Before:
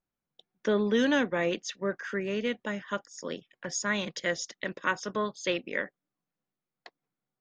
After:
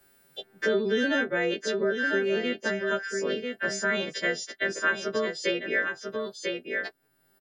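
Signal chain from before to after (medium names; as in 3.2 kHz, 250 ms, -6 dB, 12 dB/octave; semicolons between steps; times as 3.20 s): partials quantised in pitch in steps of 2 st; graphic EQ with 31 bands 100 Hz +6 dB, 250 Hz +4 dB, 400 Hz +11 dB, 630 Hz +6 dB, 1 kHz -6 dB, 1.6 kHz +9 dB, 6.3 kHz -9 dB; in parallel at -1.5 dB: compression, threshold -31 dBFS, peak gain reduction 15.5 dB; on the sum: delay 995 ms -9 dB; three bands compressed up and down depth 70%; trim -5 dB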